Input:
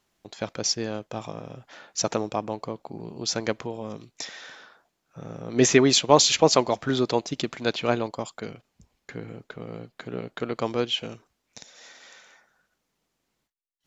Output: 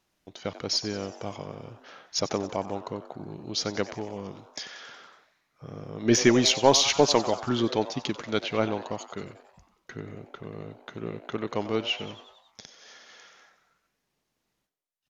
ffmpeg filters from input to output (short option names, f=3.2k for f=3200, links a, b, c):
-filter_complex "[0:a]asetrate=40517,aresample=44100,asplit=7[a][b][c][d][e][f][g];[b]adelay=92,afreqshift=140,volume=-15dB[h];[c]adelay=184,afreqshift=280,volume=-19.4dB[i];[d]adelay=276,afreqshift=420,volume=-23.9dB[j];[e]adelay=368,afreqshift=560,volume=-28.3dB[k];[f]adelay=460,afreqshift=700,volume=-32.7dB[l];[g]adelay=552,afreqshift=840,volume=-37.2dB[m];[a][h][i][j][k][l][m]amix=inputs=7:normalize=0,aeval=exprs='0.841*(cos(1*acos(clip(val(0)/0.841,-1,1)))-cos(1*PI/2))+0.0944*(cos(2*acos(clip(val(0)/0.841,-1,1)))-cos(2*PI/2))':c=same,volume=-2dB"